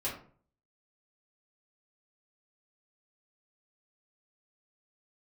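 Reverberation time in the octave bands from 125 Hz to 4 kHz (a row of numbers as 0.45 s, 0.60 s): 0.65 s, 0.55 s, 0.50 s, 0.45 s, 0.35 s, 0.25 s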